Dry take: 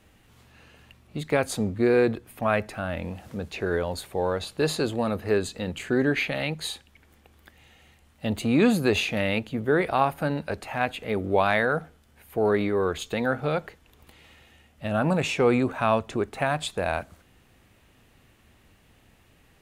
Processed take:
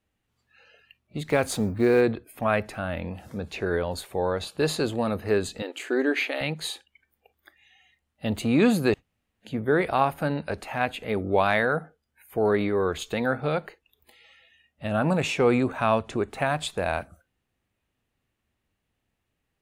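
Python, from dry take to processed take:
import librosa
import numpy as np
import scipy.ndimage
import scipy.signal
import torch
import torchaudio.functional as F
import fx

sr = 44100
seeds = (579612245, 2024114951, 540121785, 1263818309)

y = fx.law_mismatch(x, sr, coded='mu', at=(1.28, 2.01))
y = fx.brickwall_highpass(y, sr, low_hz=250.0, at=(5.62, 6.41))
y = fx.edit(y, sr, fx.room_tone_fill(start_s=8.94, length_s=0.51), tone=tone)
y = fx.noise_reduce_blind(y, sr, reduce_db=20)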